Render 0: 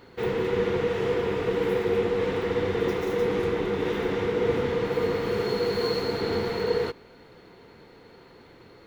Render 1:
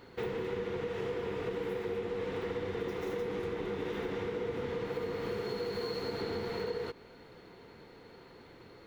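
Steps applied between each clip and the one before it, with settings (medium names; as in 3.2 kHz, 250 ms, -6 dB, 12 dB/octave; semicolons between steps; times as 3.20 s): compression, threshold -30 dBFS, peak gain reduction 10.5 dB; trim -3 dB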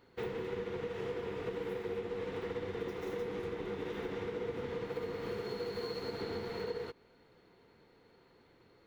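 upward expansion 1.5:1, over -50 dBFS; trim -1.5 dB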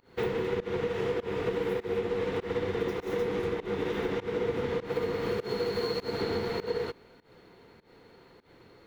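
volume shaper 100 bpm, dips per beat 1, -22 dB, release 157 ms; trim +8.5 dB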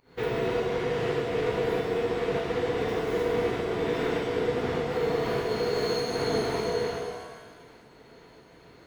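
pitch-shifted reverb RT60 1.4 s, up +7 st, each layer -8 dB, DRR -3 dB; trim -1.5 dB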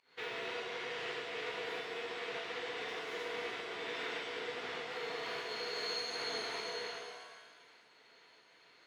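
band-pass filter 3.2 kHz, Q 0.75; trim -2 dB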